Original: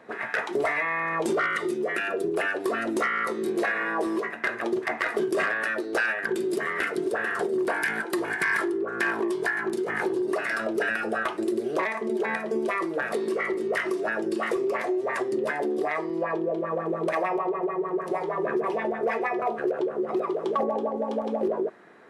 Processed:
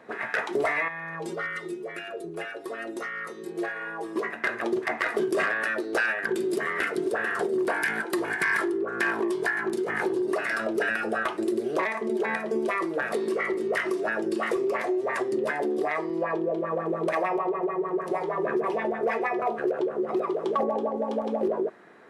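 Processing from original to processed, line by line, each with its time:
0.88–4.16 metallic resonator 82 Hz, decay 0.22 s, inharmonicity 0.008

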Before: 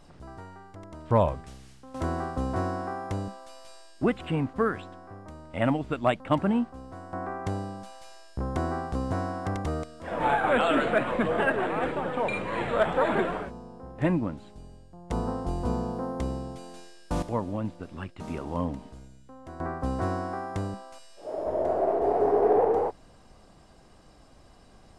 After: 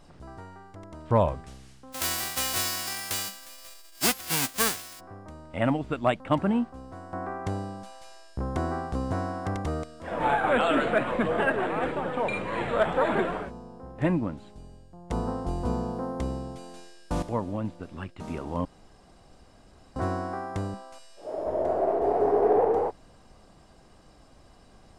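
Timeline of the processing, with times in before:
1.92–4.99 spectral whitening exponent 0.1
18.65–19.96 room tone

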